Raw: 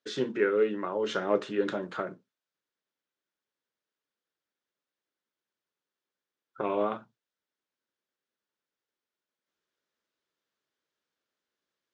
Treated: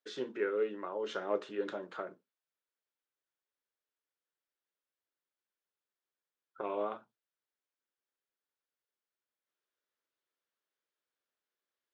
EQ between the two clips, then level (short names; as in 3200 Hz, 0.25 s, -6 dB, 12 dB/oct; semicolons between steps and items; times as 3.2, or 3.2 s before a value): tone controls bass -12 dB, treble -4 dB; dynamic EQ 1900 Hz, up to -3 dB, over -46 dBFS, Q 1.1; -5.5 dB